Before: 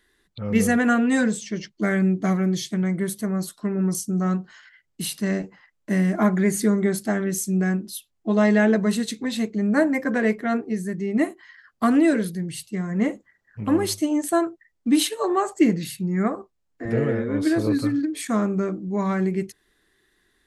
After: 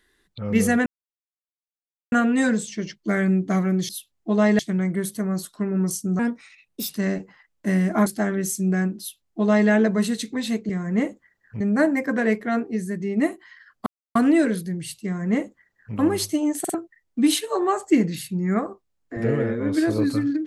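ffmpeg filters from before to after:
-filter_complex "[0:a]asplit=13[s0][s1][s2][s3][s4][s5][s6][s7][s8][s9][s10][s11][s12];[s0]atrim=end=0.86,asetpts=PTS-STARTPTS,afade=t=out:st=0.856:d=0.004:c=hsin,apad=pad_dur=1.26[s13];[s1]atrim=start=0.86:end=2.632,asetpts=PTS-STARTPTS,afade=t=in:d=0.004:c=hsin[s14];[s2]atrim=start=7.878:end=8.582[s15];[s3]atrim=start=2.628:end=4.234[s16];[s4]atrim=start=4.23:end=5.13,asetpts=PTS-STARTPTS,asetrate=56448,aresample=44100[s17];[s5]atrim=start=5.126:end=6.302[s18];[s6]atrim=start=6.948:end=9.582[s19];[s7]atrim=start=12.728:end=13.642[s20];[s8]atrim=start=9.578:end=11.84,asetpts=PTS-STARTPTS,afade=t=out:st=2.258:d=0.004:c=hsin,apad=pad_dur=0.29[s21];[s9]atrim=start=11.84:end=14.332,asetpts=PTS-STARTPTS,afade=t=in:d=0.004:c=hsin[s22];[s10]atrim=start=14.278:end=14.332[s23];[s11]atrim=start=14.278:end=14.332[s24];[s12]atrim=start=14.428[s25];[s13][s14]concat=n=2:v=0:a=1[s26];[s26][s15]acrossfade=d=0.004:c1=hsin:c2=hsin[s27];[s27][s16]acrossfade=d=0.004:c1=hsin:c2=hsin[s28];[s28][s17]acrossfade=d=0.004:c1=hsin:c2=hsin[s29];[s29][s18]acrossfade=d=0.004:c1=hsin:c2=hsin[s30];[s30][s19]acrossfade=d=0.004:c1=hsin:c2=hsin[s31];[s31][s20]acrossfade=d=0.004:c1=hsin:c2=hsin[s32];[s21][s22]concat=n=2:v=0:a=1[s33];[s32][s33]acrossfade=d=0.004:c1=hsin:c2=hsin[s34];[s34][s23]acrossfade=d=0.004:c1=hsin:c2=hsin[s35];[s35][s24]acrossfade=d=0.004:c1=hsin:c2=hsin[s36];[s36][s25]acrossfade=d=0.004:c1=hsin:c2=hsin"

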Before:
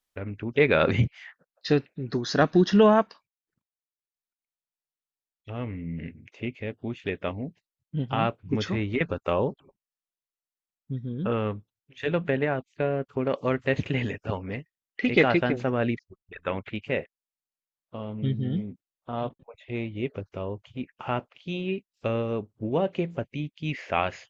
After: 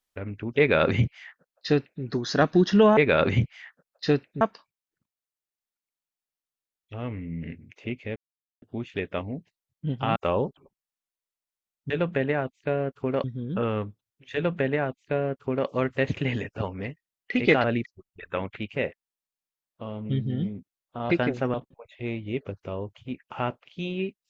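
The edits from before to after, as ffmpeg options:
-filter_complex "[0:a]asplit=10[s0][s1][s2][s3][s4][s5][s6][s7][s8][s9];[s0]atrim=end=2.972[s10];[s1]atrim=start=0.588:end=2.032[s11];[s2]atrim=start=2.968:end=6.72,asetpts=PTS-STARTPTS,afade=t=out:st=3.748:d=0.004:c=hsin,apad=pad_dur=0.46[s12];[s3]atrim=start=6.72:end=8.262,asetpts=PTS-STARTPTS,afade=t=in:d=0.004:c=hsin[s13];[s4]atrim=start=9.188:end=10.932[s14];[s5]atrim=start=12.028:end=13.372[s15];[s6]atrim=start=10.928:end=15.332[s16];[s7]atrim=start=15.768:end=19.232[s17];[s8]atrim=start=15.328:end=15.772[s18];[s9]atrim=start=19.228[s19];[s10][s11]acrossfade=d=0.004:c1=hsin:c2=hsin[s20];[s12][s13]concat=n=2:v=0:a=1[s21];[s20][s21]acrossfade=d=0.004:c1=hsin:c2=hsin[s22];[s22][s14]acrossfade=d=0.004:c1=hsin:c2=hsin[s23];[s23][s15]acrossfade=d=0.004:c1=hsin:c2=hsin[s24];[s24][s16]acrossfade=d=0.004:c1=hsin:c2=hsin[s25];[s25][s17]acrossfade=d=0.004:c1=hsin:c2=hsin[s26];[s26][s18]acrossfade=d=0.004:c1=hsin:c2=hsin[s27];[s27][s19]acrossfade=d=0.004:c1=hsin:c2=hsin"

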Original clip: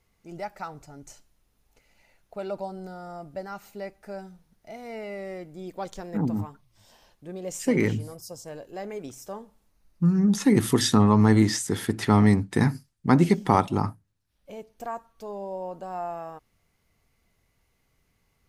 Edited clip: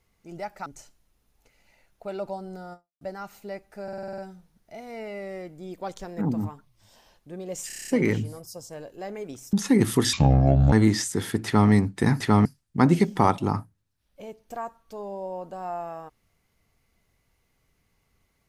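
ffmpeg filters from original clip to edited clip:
-filter_complex "[0:a]asplit=22[s0][s1][s2][s3][s4][s5][s6][s7][s8][s9][s10][s11][s12][s13][s14][s15][s16][s17][s18][s19][s20][s21];[s0]atrim=end=0.662[s22];[s1]atrim=start=0.968:end=3.32,asetpts=PTS-STARTPTS,afade=t=out:st=2.072:d=0.28:c=exp[s23];[s2]atrim=start=3.32:end=4.192,asetpts=PTS-STARTPTS,afade=t=in:d=0.004:c=hsin[s24];[s3]atrim=start=4.138:end=4.192[s25];[s4]atrim=start=4.138:end=4.192[s26];[s5]atrim=start=4.138:end=4.192[s27];[s6]atrim=start=4.138:end=4.192[s28];[s7]atrim=start=4.138:end=4.192[s29];[s8]atrim=start=4.138:end=4.192[s30];[s9]atrim=start=4.138:end=7.662[s31];[s10]atrim=start=7.628:end=7.662[s32];[s11]atrim=start=7.628:end=7.662[s33];[s12]atrim=start=7.628:end=7.662[s34];[s13]atrim=start=7.628:end=7.662[s35];[s14]atrim=start=7.628:end=7.662[s36];[s15]atrim=start=7.628:end=7.662[s37];[s16]atrim=start=7.628:end=9.282[s38];[s17]atrim=start=10.288:end=10.894[s39];[s18]atrim=start=10.89:end=11.27,asetpts=PTS-STARTPTS,asetrate=28224,aresample=44100,atrim=end_sample=26184,asetpts=PTS-STARTPTS[s40];[s19]atrim=start=11.266:end=12.752[s41];[s20]atrim=start=11.998:end=12.252[s42];[s21]atrim=start=12.748[s43];[s23][s24]concat=n=2:v=0:a=1[s44];[s22][s44]acrossfade=d=0.004:c1=hsin:c2=hsin[s45];[s45][s25]acrossfade=d=0.004:c1=hsin:c2=hsin[s46];[s46][s26]acrossfade=d=0.004:c1=hsin:c2=hsin[s47];[s47][s27]acrossfade=d=0.004:c1=hsin:c2=hsin[s48];[s48][s28]acrossfade=d=0.004:c1=hsin:c2=hsin[s49];[s49][s29]acrossfade=d=0.004:c1=hsin:c2=hsin[s50];[s50][s30]acrossfade=d=0.004:c1=hsin:c2=hsin[s51];[s51][s31]acrossfade=d=0.004:c1=hsin:c2=hsin[s52];[s52][s32]acrossfade=d=0.004:c1=hsin:c2=hsin[s53];[s53][s33]acrossfade=d=0.004:c1=hsin:c2=hsin[s54];[s54][s34]acrossfade=d=0.004:c1=hsin:c2=hsin[s55];[s55][s35]acrossfade=d=0.004:c1=hsin:c2=hsin[s56];[s56][s36]acrossfade=d=0.004:c1=hsin:c2=hsin[s57];[s57][s37]acrossfade=d=0.004:c1=hsin:c2=hsin[s58];[s58][s38]acrossfade=d=0.004:c1=hsin:c2=hsin[s59];[s59][s39]acrossfade=d=0.004:c1=hsin:c2=hsin[s60];[s60][s40]acrossfade=d=0.004:c1=hsin:c2=hsin[s61];[s61][s41]acrossfade=d=0.004:c1=hsin:c2=hsin[s62];[s62][s42]acrossfade=d=0.004:c1=hsin:c2=hsin[s63];[s63][s43]acrossfade=d=0.004:c1=hsin:c2=hsin"

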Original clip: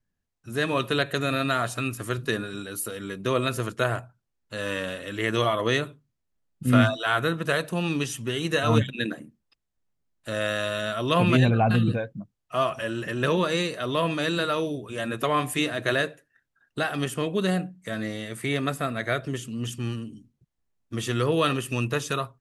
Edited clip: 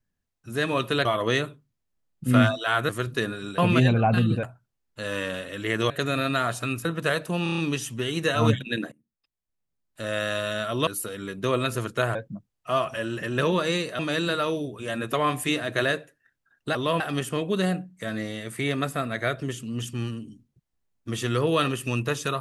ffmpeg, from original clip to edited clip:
-filter_complex "[0:a]asplit=18[s0][s1][s2][s3][s4][s5][s6][s7][s8][s9][s10][s11][s12][s13][s14][s15][s16][s17];[s0]atrim=end=1.052[s18];[s1]atrim=start=5.438:end=7.282[s19];[s2]atrim=start=1.998:end=2.692[s20];[s3]atrim=start=11.148:end=12.002[s21];[s4]atrim=start=3.968:end=5.442[s22];[s5]atrim=start=1.048:end=2.002[s23];[s6]atrim=start=7.278:end=7.892[s24];[s7]atrim=start=7.858:end=7.892[s25];[s8]atrim=start=7.858:end=7.892[s26];[s9]atrim=start=7.858:end=7.892[s27];[s10]atrim=start=7.858:end=7.892[s28];[s11]atrim=start=7.858:end=9.2,asetpts=PTS-STARTPTS,afade=t=out:st=1.338:d=0.004:c=hsin:silence=0.0749894[s29];[s12]atrim=start=9.2:end=11.152,asetpts=PTS-STARTPTS,afade=t=in:d=1.4:silence=0.0749894[s30];[s13]atrim=start=2.688:end=3.972[s31];[s14]atrim=start=11.998:end=13.842[s32];[s15]atrim=start=14.088:end=16.852[s33];[s16]atrim=start=13.838:end=14.092[s34];[s17]atrim=start=16.848[s35];[s18][s19]acrossfade=d=0.004:c1=hsin:c2=hsin[s36];[s36][s20]acrossfade=d=0.004:c1=hsin:c2=hsin[s37];[s37][s21]acrossfade=d=0.004:c1=hsin:c2=hsin[s38];[s38][s22]acrossfade=d=0.004:c1=hsin:c2=hsin[s39];[s39][s23]acrossfade=d=0.004:c1=hsin:c2=hsin[s40];[s40][s24]acrossfade=d=0.004:c1=hsin:c2=hsin[s41];[s41][s25]acrossfade=d=0.004:c1=hsin:c2=hsin[s42];[s42][s26]acrossfade=d=0.004:c1=hsin:c2=hsin[s43];[s43][s27]acrossfade=d=0.004:c1=hsin:c2=hsin[s44];[s44][s28]acrossfade=d=0.004:c1=hsin:c2=hsin[s45];[s29][s30]concat=n=2:v=0:a=1[s46];[s45][s46]acrossfade=d=0.004:c1=hsin:c2=hsin[s47];[s47][s31]acrossfade=d=0.004:c1=hsin:c2=hsin[s48];[s48][s32]acrossfade=d=0.004:c1=hsin:c2=hsin[s49];[s49][s33]acrossfade=d=0.004:c1=hsin:c2=hsin[s50];[s50][s34]acrossfade=d=0.004:c1=hsin:c2=hsin[s51];[s51][s35]acrossfade=d=0.004:c1=hsin:c2=hsin"

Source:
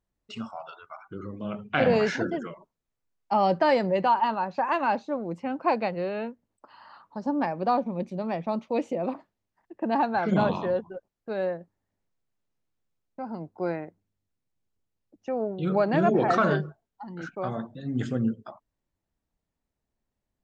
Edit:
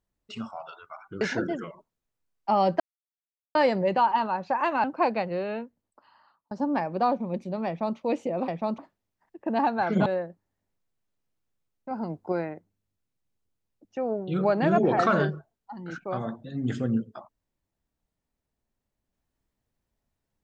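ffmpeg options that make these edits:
-filter_complex "[0:a]asplit=10[s0][s1][s2][s3][s4][s5][s6][s7][s8][s9];[s0]atrim=end=1.212[s10];[s1]atrim=start=2.038:end=3.63,asetpts=PTS-STARTPTS,afade=t=out:st=1.588:d=0.004:c=hsin,apad=pad_dur=0.75[s11];[s2]atrim=start=3.63:end=4.922,asetpts=PTS-STARTPTS,afade=t=in:d=0.004:c=hsin[s12];[s3]atrim=start=5.498:end=7.17,asetpts=PTS-STARTPTS,afade=t=out:st=0.652:d=1.02[s13];[s4]atrim=start=7.17:end=9.142,asetpts=PTS-STARTPTS,afade=t=in:d=0.004:c=hsin[s14];[s5]atrim=start=8.328:end=8.632[s15];[s6]atrim=start=9.138:end=10.422[s16];[s7]atrim=start=11.368:end=13.222[s17];[s8]atrim=start=13.218:end=13.632,asetpts=PTS-STARTPTS,volume=1.5[s18];[s9]atrim=start=13.628[s19];[s11][s12]concat=n=2:v=0:a=1[s20];[s10][s20]acrossfade=d=0.004:c1=hsin:c2=hsin[s21];[s13][s14]concat=n=2:v=0:a=1[s22];[s21][s22]acrossfade=d=0.004:c1=hsin:c2=hsin[s23];[s23][s15]acrossfade=d=0.004:c1=hsin:c2=hsin[s24];[s24][s16]acrossfade=d=0.004:c1=hsin:c2=hsin[s25];[s25][s17]acrossfade=d=0.004:c1=hsin:c2=hsin[s26];[s26][s18]acrossfade=d=0.004:c1=hsin:c2=hsin[s27];[s27][s19]acrossfade=d=0.004:c1=hsin:c2=hsin"

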